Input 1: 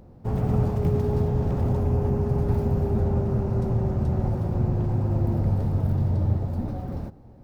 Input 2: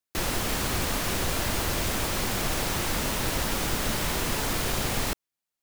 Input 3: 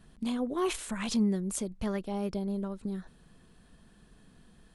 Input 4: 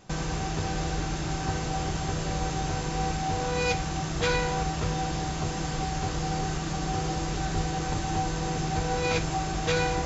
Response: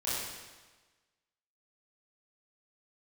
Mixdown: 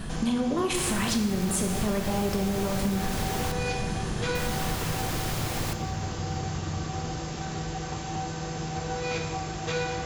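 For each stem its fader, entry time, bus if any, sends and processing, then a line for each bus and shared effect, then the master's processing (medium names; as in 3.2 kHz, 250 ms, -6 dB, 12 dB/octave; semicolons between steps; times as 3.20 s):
-12.0 dB, 0.45 s, no send, none
-5.0 dB, 0.60 s, muted 3.52–4.35 s, send -19.5 dB, none
+3.0 dB, 0.00 s, send -7 dB, level flattener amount 50%
-7.0 dB, 0.00 s, send -7 dB, high-pass 66 Hz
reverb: on, RT60 1.3 s, pre-delay 23 ms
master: compression 6:1, threshold -23 dBFS, peak gain reduction 8.5 dB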